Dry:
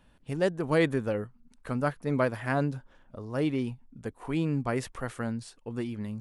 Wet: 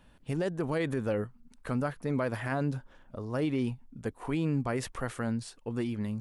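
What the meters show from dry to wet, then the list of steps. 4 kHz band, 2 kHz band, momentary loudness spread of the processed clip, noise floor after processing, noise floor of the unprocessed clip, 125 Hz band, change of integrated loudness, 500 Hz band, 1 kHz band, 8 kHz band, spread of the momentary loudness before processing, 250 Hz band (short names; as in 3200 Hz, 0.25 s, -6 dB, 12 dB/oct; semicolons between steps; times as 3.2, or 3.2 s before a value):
-2.5 dB, -3.5 dB, 9 LU, -60 dBFS, -62 dBFS, -1.0 dB, -2.5 dB, -3.5 dB, -3.0 dB, +1.0 dB, 15 LU, -1.0 dB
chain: limiter -23 dBFS, peak gain reduction 10.5 dB; gain +2 dB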